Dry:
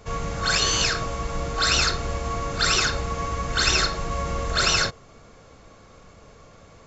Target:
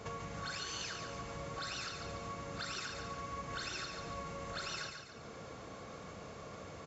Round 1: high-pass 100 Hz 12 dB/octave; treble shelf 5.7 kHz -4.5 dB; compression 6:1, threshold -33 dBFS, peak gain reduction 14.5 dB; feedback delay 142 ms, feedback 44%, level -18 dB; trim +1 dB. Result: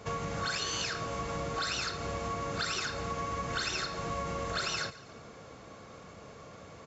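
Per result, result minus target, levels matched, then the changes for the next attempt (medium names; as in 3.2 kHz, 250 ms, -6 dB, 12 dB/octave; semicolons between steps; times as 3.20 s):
compression: peak gain reduction -8.5 dB; echo-to-direct -12 dB
change: compression 6:1, threshold -43.5 dBFS, peak gain reduction 23 dB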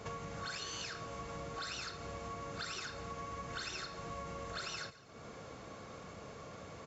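echo-to-direct -12 dB
change: feedback delay 142 ms, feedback 44%, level -6 dB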